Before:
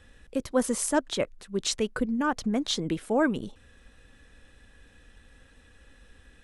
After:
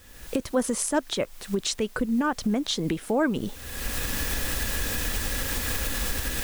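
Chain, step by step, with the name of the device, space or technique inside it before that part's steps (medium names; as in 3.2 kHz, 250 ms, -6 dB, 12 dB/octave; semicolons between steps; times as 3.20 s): cheap recorder with automatic gain (white noise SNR 26 dB; recorder AGC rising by 39 dB/s)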